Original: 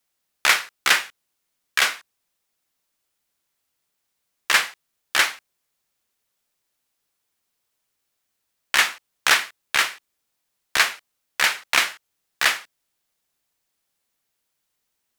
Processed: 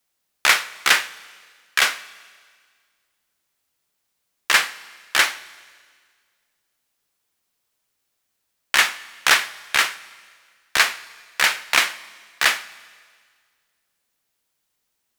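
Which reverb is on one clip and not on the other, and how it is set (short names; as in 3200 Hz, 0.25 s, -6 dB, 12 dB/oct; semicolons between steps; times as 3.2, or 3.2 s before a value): Schroeder reverb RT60 1.8 s, combs from 29 ms, DRR 18 dB; gain +1.5 dB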